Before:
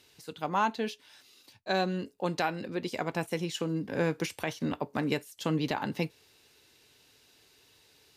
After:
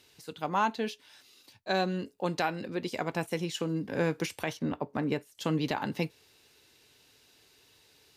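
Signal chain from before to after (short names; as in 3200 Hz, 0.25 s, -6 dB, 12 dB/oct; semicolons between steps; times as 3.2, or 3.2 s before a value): 4.57–5.35 high shelf 2600 Hz -10.5 dB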